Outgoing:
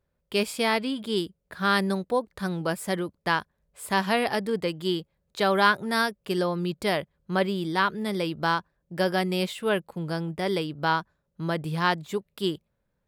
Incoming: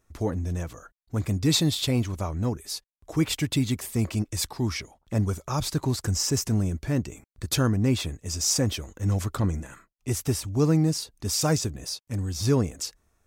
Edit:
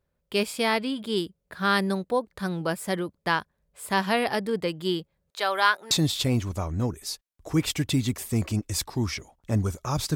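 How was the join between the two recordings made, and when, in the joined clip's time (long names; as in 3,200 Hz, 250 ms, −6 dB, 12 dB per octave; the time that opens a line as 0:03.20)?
outgoing
0:05.30–0:05.91: high-pass filter 660 Hz 12 dB per octave
0:05.91: continue with incoming from 0:01.54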